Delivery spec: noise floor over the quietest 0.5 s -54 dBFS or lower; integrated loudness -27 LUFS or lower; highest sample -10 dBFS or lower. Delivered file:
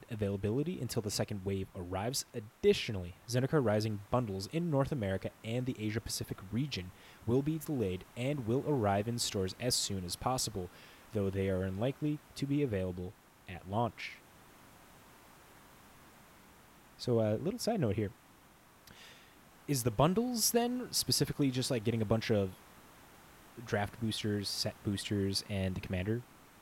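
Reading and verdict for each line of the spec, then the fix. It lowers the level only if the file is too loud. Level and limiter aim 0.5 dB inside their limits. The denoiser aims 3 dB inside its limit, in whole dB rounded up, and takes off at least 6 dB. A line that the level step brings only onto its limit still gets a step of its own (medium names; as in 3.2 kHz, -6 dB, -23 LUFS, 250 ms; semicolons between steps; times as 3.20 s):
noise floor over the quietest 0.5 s -61 dBFS: pass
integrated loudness -34.5 LUFS: pass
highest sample -15.5 dBFS: pass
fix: none needed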